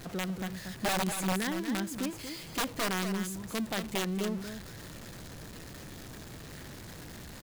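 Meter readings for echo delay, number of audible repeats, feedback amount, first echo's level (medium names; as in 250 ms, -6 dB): 234 ms, 1, no regular repeats, -8.5 dB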